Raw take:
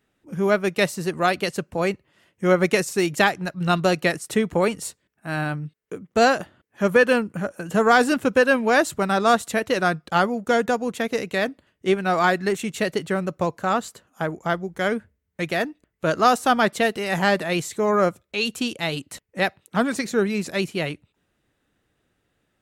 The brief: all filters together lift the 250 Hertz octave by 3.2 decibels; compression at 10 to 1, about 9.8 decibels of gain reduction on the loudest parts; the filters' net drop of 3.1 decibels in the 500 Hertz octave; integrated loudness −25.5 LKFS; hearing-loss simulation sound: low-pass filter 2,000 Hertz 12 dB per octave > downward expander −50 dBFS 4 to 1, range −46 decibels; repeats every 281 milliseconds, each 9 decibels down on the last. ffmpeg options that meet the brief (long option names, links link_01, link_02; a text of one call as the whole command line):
ffmpeg -i in.wav -af "equalizer=frequency=250:width_type=o:gain=5.5,equalizer=frequency=500:width_type=o:gain=-5.5,acompressor=threshold=-23dB:ratio=10,lowpass=2000,aecho=1:1:281|562|843|1124:0.355|0.124|0.0435|0.0152,agate=range=-46dB:threshold=-50dB:ratio=4,volume=4dB" out.wav